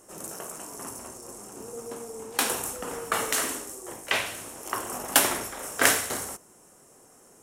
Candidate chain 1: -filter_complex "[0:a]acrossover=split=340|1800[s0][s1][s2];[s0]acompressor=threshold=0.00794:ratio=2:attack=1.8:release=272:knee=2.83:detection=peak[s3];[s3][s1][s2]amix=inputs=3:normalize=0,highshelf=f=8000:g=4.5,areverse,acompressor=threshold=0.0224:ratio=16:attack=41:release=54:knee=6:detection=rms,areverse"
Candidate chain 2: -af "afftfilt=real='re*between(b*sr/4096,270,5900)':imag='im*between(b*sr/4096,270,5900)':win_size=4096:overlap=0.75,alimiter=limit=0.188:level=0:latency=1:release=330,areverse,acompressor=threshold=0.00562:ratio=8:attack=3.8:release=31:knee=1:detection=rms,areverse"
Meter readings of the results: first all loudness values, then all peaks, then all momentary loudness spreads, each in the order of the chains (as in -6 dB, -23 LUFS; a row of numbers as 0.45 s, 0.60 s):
-34.0 LUFS, -47.5 LUFS; -17.5 dBFS, -34.5 dBFS; 10 LU, 8 LU